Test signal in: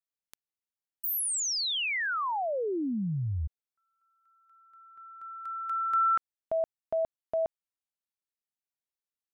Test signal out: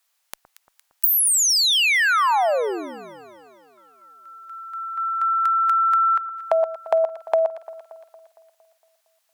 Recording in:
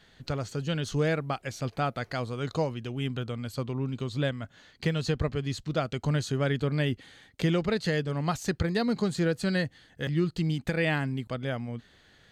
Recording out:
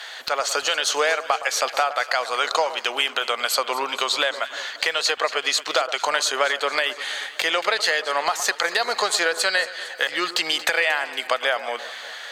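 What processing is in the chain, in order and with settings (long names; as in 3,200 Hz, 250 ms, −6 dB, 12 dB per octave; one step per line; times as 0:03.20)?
high-pass filter 660 Hz 24 dB per octave
downward compressor 10 to 1, threshold −42 dBFS
asymmetric clip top −32.5 dBFS
on a send: delay that swaps between a low-pass and a high-pass 115 ms, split 1,400 Hz, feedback 74%, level −13 dB
on the sum: boost into a limiter +30.5 dB
level −6 dB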